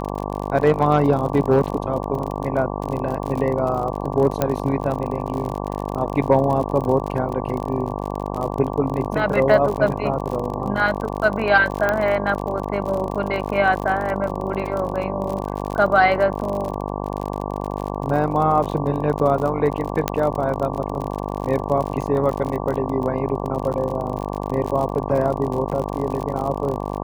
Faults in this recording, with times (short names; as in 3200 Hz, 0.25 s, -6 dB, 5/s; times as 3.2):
buzz 50 Hz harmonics 23 -27 dBFS
crackle 47/s -26 dBFS
4.42 pop -5 dBFS
11.89 pop -8 dBFS
20.08 pop -4 dBFS